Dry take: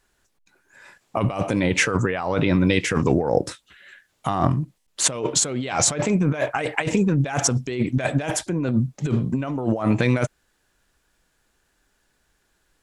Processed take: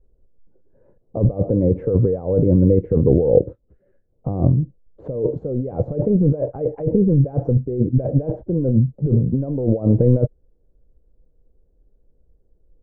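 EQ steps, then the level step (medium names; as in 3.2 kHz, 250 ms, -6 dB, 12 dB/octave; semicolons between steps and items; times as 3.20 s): resonant low-pass 500 Hz, resonance Q 4.9; tilt EQ -4 dB/octave; bass shelf 160 Hz +6.5 dB; -10.0 dB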